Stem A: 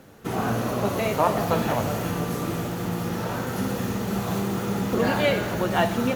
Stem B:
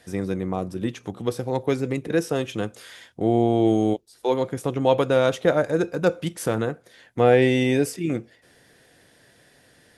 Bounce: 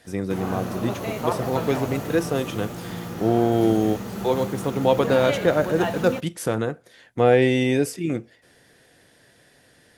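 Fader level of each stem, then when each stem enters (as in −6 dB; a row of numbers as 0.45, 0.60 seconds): −5.0, 0.0 decibels; 0.05, 0.00 seconds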